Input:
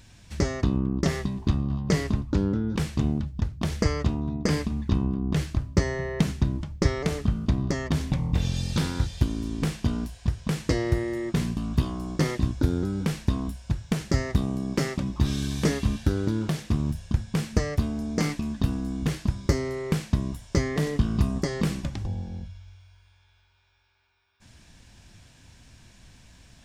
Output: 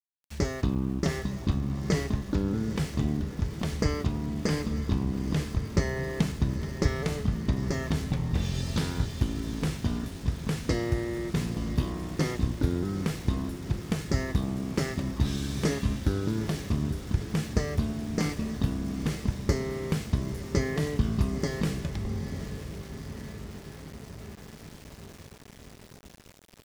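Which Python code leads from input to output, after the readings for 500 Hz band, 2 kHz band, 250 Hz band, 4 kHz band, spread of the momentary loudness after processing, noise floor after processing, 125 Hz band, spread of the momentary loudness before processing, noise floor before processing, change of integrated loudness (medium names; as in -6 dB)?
-2.0 dB, -2.0 dB, -2.5 dB, -2.0 dB, 13 LU, -50 dBFS, -2.5 dB, 4 LU, -58 dBFS, -2.5 dB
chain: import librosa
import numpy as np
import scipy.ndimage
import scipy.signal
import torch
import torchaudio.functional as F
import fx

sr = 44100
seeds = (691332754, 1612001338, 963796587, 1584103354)

y = fx.comb_fb(x, sr, f0_hz=430.0, decay_s=0.45, harmonics='all', damping=0.0, mix_pct=60)
y = fx.echo_diffused(y, sr, ms=888, feedback_pct=70, wet_db=-11.0)
y = np.where(np.abs(y) >= 10.0 ** (-48.5 / 20.0), y, 0.0)
y = F.gain(torch.from_numpy(y), 4.5).numpy()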